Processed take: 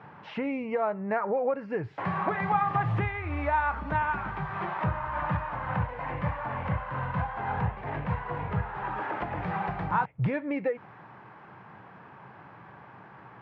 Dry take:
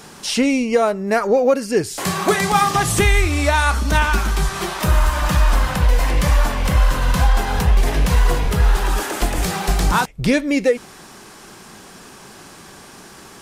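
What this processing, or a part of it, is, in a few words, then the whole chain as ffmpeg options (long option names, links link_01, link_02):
bass amplifier: -af "acompressor=threshold=-16dB:ratio=6,highpass=frequency=84:width=0.5412,highpass=frequency=84:width=1.3066,equalizer=frequency=120:width_type=q:width=4:gain=9,equalizer=frequency=240:width_type=q:width=4:gain=-7,equalizer=frequency=380:width_type=q:width=4:gain=-7,equalizer=frequency=910:width_type=q:width=4:gain=6,lowpass=frequency=2100:width=0.5412,lowpass=frequency=2100:width=1.3066,volume=-7dB"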